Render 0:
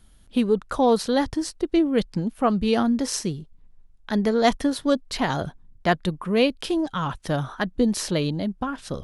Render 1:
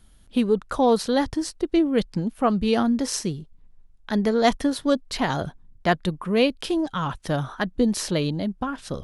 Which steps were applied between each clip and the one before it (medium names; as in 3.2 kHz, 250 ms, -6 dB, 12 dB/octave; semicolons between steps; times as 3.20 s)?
no audible change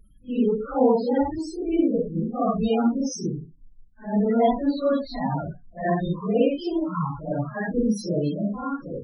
phase randomisation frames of 200 ms; loudest bins only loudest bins 16